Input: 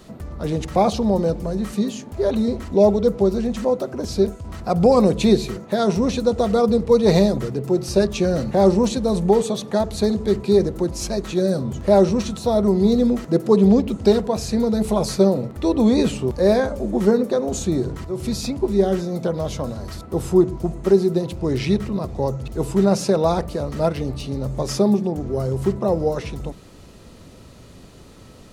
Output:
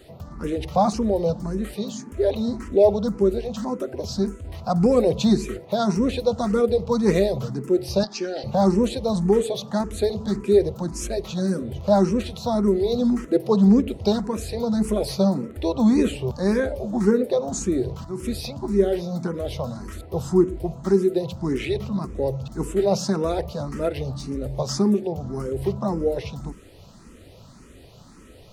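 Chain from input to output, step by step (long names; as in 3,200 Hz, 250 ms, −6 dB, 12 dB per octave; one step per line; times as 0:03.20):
0:08.03–0:08.44: loudspeaker in its box 430–5,900 Hz, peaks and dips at 530 Hz −7 dB, 790 Hz +9 dB, 1,100 Hz −9 dB, 2,200 Hz −5 dB, 3,200 Hz +5 dB, 4,800 Hz +10 dB
frequency shifter mixed with the dry sound +1.8 Hz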